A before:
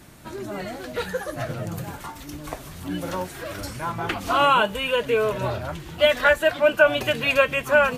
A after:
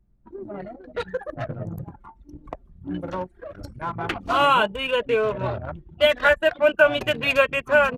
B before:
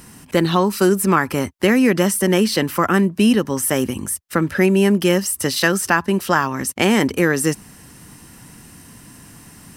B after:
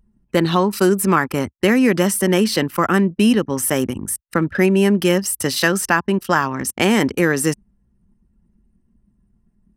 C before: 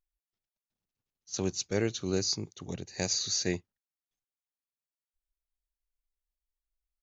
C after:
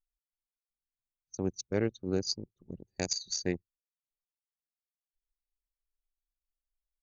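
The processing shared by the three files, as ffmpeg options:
ffmpeg -i in.wav -af "anlmdn=100" out.wav

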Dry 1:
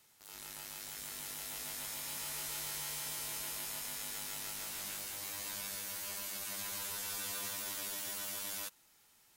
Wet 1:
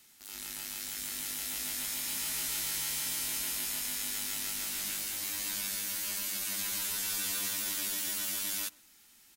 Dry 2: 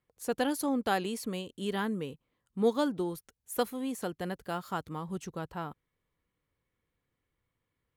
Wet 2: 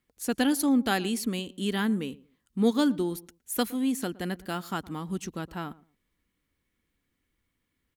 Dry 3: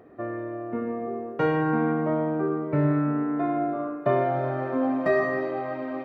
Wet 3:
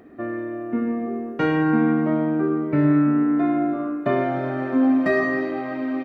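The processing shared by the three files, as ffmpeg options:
ffmpeg -i in.wav -filter_complex "[0:a]equalizer=frequency=125:width_type=o:width=1:gain=-9,equalizer=frequency=250:width_type=o:width=1:gain=5,equalizer=frequency=500:width_type=o:width=1:gain=-8,equalizer=frequency=1000:width_type=o:width=1:gain=-6,asplit=2[link_01][link_02];[link_02]adelay=115,lowpass=frequency=990:poles=1,volume=-19.5dB,asplit=2[link_03][link_04];[link_04]adelay=115,lowpass=frequency=990:poles=1,volume=0.24[link_05];[link_01][link_03][link_05]amix=inputs=3:normalize=0,volume=7dB" out.wav

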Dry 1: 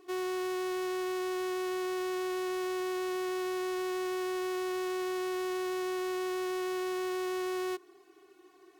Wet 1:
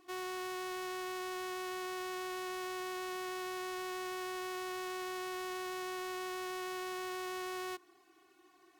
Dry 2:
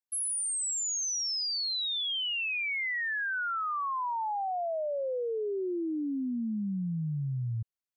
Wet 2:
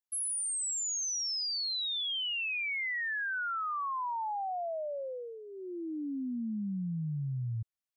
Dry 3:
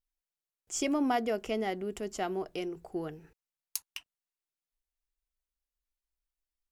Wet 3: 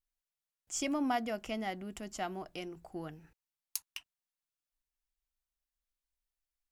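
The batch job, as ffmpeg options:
ffmpeg -i in.wav -af "equalizer=frequency=420:width_type=o:width=0.43:gain=-13,volume=-2dB" out.wav

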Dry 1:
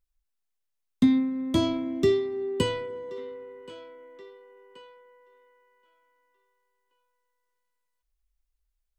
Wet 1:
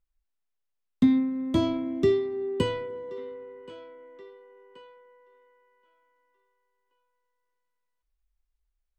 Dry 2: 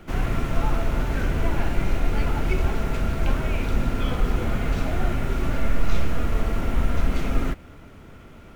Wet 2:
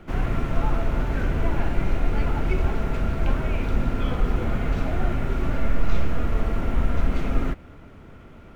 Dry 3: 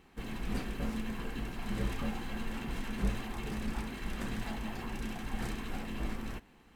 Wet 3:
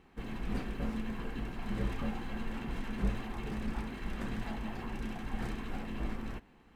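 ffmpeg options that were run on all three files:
ffmpeg -i in.wav -af "highshelf=frequency=3900:gain=-9.5" out.wav

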